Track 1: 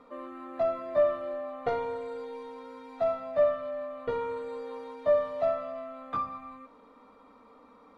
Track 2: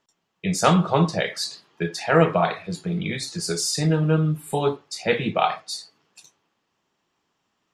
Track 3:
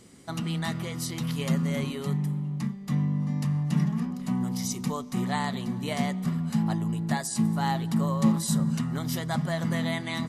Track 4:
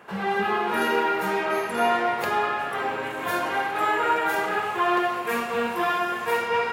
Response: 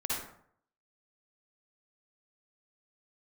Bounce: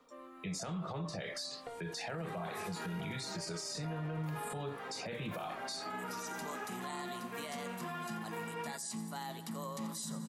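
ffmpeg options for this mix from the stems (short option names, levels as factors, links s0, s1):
-filter_complex "[0:a]aemphasis=mode=production:type=75kf,acompressor=threshold=0.0251:ratio=6,volume=0.282[s0];[1:a]acompressor=threshold=0.0562:ratio=6,volume=0.794,asplit=2[s1][s2];[2:a]highpass=280,aemphasis=mode=production:type=50kf,adelay=1550,volume=0.335,asplit=2[s3][s4];[s4]volume=0.133[s5];[3:a]adelay=2050,volume=0.141[s6];[s2]apad=whole_len=521741[s7];[s3][s7]sidechaincompress=threshold=0.00282:ratio=8:attack=16:release=203[s8];[s5]aecho=0:1:86|172|258|344|430|516|602|688:1|0.54|0.292|0.157|0.085|0.0459|0.0248|0.0134[s9];[s0][s1][s8][s6][s9]amix=inputs=5:normalize=0,acrossover=split=200|440|7800[s10][s11][s12][s13];[s10]acompressor=threshold=0.0224:ratio=4[s14];[s11]acompressor=threshold=0.00562:ratio=4[s15];[s12]acompressor=threshold=0.0141:ratio=4[s16];[s13]acompressor=threshold=0.00224:ratio=4[s17];[s14][s15][s16][s17]amix=inputs=4:normalize=0,alimiter=level_in=2.66:limit=0.0631:level=0:latency=1:release=21,volume=0.376"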